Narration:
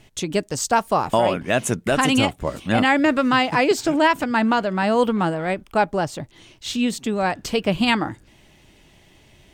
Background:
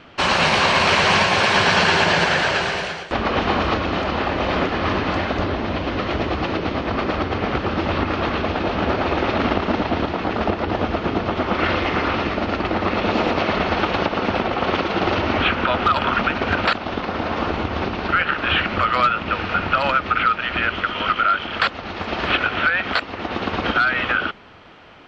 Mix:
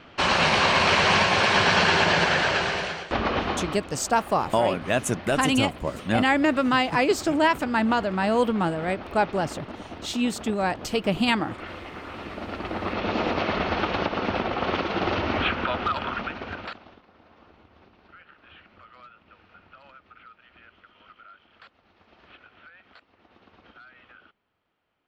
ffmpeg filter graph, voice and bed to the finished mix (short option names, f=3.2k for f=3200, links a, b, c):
-filter_complex "[0:a]adelay=3400,volume=-3.5dB[a];[1:a]volume=9dB,afade=t=out:st=3.24:d=0.57:silence=0.188365,afade=t=in:st=12.07:d=1.24:silence=0.237137,afade=t=out:st=15.39:d=1.63:silence=0.0473151[b];[a][b]amix=inputs=2:normalize=0"